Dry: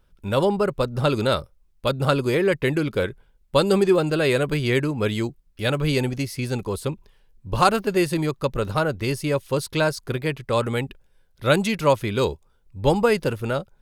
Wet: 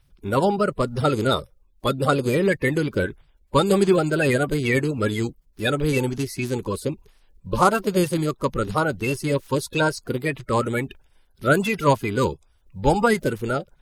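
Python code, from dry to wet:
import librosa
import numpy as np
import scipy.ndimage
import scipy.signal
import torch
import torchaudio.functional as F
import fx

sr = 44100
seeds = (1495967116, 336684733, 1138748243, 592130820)

y = fx.spec_quant(x, sr, step_db=30)
y = y * 10.0 ** (1.0 / 20.0)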